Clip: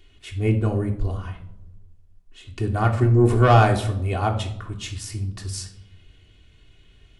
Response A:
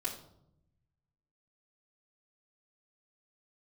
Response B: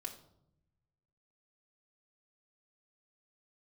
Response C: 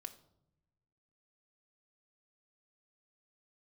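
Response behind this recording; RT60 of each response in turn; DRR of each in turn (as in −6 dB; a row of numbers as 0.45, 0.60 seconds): B; 0.75, 0.75, 0.80 seconds; −6.5, 0.0, 5.5 decibels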